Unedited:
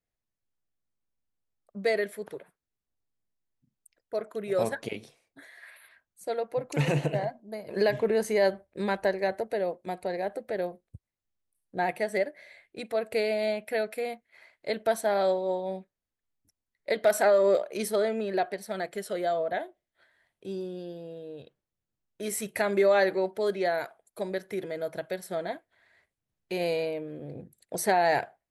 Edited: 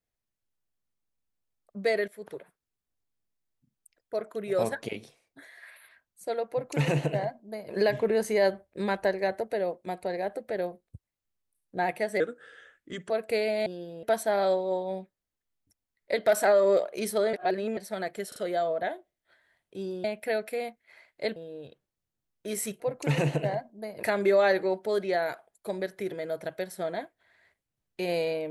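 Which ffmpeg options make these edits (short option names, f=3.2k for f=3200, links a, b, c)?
-filter_complex "[0:a]asplit=14[a][b][c][d][e][f][g][h][i][j][k][l][m][n];[a]atrim=end=2.08,asetpts=PTS-STARTPTS,afade=t=out:st=2.076:d=0.004:c=hsin:silence=0.211349[o];[b]atrim=start=2.08:end=12.204,asetpts=PTS-STARTPTS,afade=t=in:d=0.27:silence=0.211349[p];[c]atrim=start=12.2:end=12.93,asetpts=PTS-STARTPTS,asetrate=35721,aresample=44100,atrim=end_sample=39744,asetpts=PTS-STARTPTS[q];[d]atrim=start=12.926:end=13.492[r];[e]atrim=start=20.738:end=21.112[s];[f]atrim=start=14.808:end=18.112[t];[g]atrim=start=18.108:end=18.552,asetpts=PTS-STARTPTS,areverse[u];[h]atrim=start=18.548:end=19.102[v];[i]atrim=start=19.058:end=19.102[w];[j]atrim=start=19.058:end=20.742[x];[k]atrim=start=13.488:end=14.812[y];[l]atrim=start=21.108:end=22.552[z];[m]atrim=start=6.498:end=7.732[aa];[n]atrim=start=22.548[ab];[o][p]concat=n=2:v=0:a=1[ac];[ac][q]acrossfade=d=0.004:c1=hsin:c2=hsin[ad];[ad][r]acrossfade=d=0.004:c1=hsin:c2=hsin[ae];[ae][s]acrossfade=d=0.004:c1=hsin:c2=hsin[af];[af][t]acrossfade=d=0.004:c1=hsin:c2=hsin[ag];[ag][u]acrossfade=d=0.004:c1=hsin:c2=hsin[ah];[ah][v]acrossfade=d=0.004:c1=hsin:c2=hsin[ai];[ai][w]acrossfade=d=0.004:c1=hsin:c2=hsin[aj];[aj][x]acrossfade=d=0.004:c1=hsin:c2=hsin[ak];[ak][y]acrossfade=d=0.004:c1=hsin:c2=hsin[al];[al][z]acrossfade=d=0.004:c1=hsin:c2=hsin[am];[am][aa]acrossfade=d=0.004:c1=hsin:c2=hsin[an];[an][ab]acrossfade=d=0.004:c1=hsin:c2=hsin"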